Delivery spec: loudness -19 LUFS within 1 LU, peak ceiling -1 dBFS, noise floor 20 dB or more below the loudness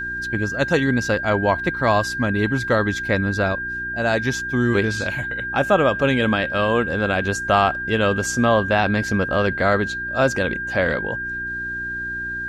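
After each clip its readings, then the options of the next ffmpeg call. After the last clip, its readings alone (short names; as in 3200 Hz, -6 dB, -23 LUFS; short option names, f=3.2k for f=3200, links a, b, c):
hum 60 Hz; harmonics up to 360 Hz; hum level -36 dBFS; steady tone 1600 Hz; tone level -25 dBFS; loudness -20.5 LUFS; peak -3.5 dBFS; loudness target -19.0 LUFS
-> -af "bandreject=f=60:t=h:w=4,bandreject=f=120:t=h:w=4,bandreject=f=180:t=h:w=4,bandreject=f=240:t=h:w=4,bandreject=f=300:t=h:w=4,bandreject=f=360:t=h:w=4"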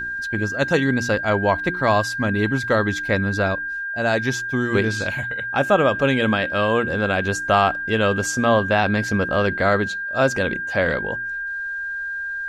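hum none; steady tone 1600 Hz; tone level -25 dBFS
-> -af "bandreject=f=1.6k:w=30"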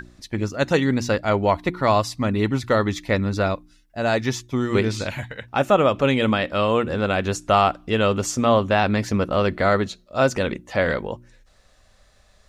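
steady tone none; loudness -21.5 LUFS; peak -4.0 dBFS; loudness target -19.0 LUFS
-> -af "volume=2.5dB"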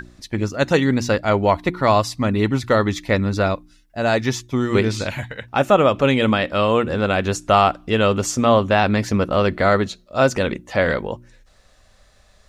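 loudness -19.0 LUFS; peak -1.5 dBFS; noise floor -54 dBFS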